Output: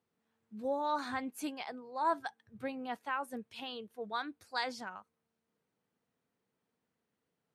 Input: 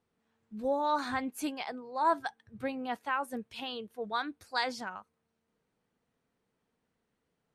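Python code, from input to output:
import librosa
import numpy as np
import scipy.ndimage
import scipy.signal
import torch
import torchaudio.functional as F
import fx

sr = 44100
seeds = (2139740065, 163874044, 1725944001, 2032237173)

y = scipy.signal.sosfilt(scipy.signal.butter(2, 90.0, 'highpass', fs=sr, output='sos'), x)
y = F.gain(torch.from_numpy(y), -4.0).numpy()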